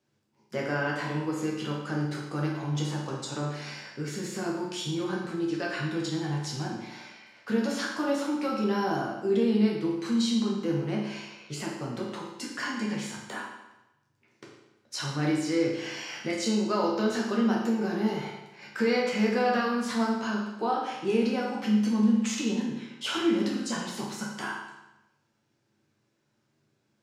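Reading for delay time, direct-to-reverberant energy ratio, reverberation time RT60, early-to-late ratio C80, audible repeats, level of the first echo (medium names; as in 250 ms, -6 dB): no echo, -3.5 dB, 0.95 s, 5.0 dB, no echo, no echo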